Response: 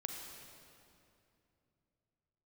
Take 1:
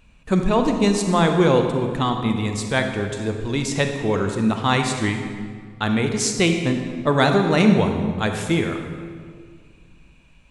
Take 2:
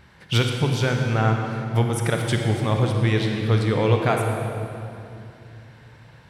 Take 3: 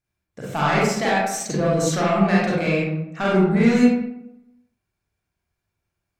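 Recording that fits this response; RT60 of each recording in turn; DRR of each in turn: 2; 1.9, 2.8, 0.80 seconds; 4.5, 2.0, −7.0 decibels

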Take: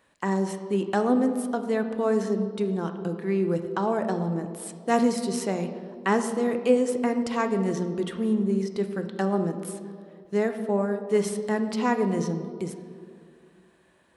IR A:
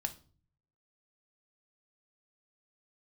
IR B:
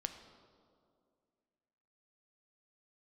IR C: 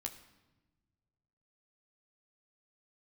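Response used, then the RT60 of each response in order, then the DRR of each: B; 0.40, 2.2, 1.1 seconds; 7.0, 7.0, 3.0 decibels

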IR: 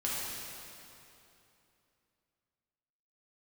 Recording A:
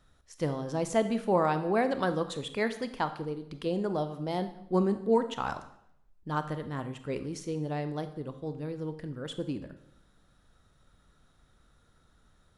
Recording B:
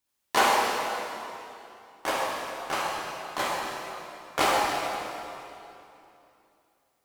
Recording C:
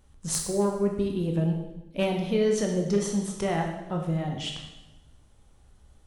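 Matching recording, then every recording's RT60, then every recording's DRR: B; 0.75, 2.9, 1.0 seconds; 10.0, −7.0, 1.0 decibels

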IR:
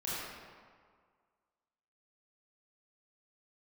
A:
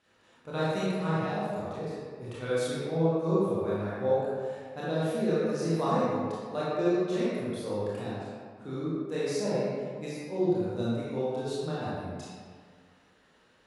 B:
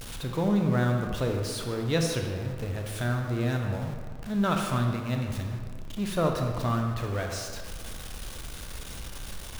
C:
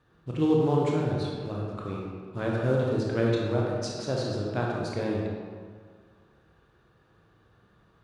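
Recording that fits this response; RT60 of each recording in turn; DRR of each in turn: A; 1.8, 1.8, 1.8 seconds; −9.5, 2.5, −3.0 decibels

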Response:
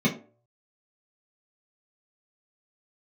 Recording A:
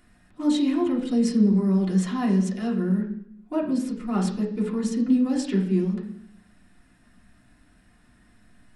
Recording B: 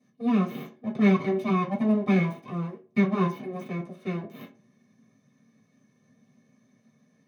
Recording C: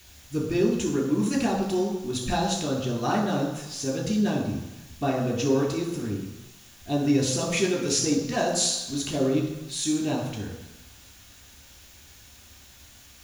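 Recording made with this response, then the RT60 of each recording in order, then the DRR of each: B; 0.70, 0.45, 1.0 seconds; −4.0, −6.0, −1.0 decibels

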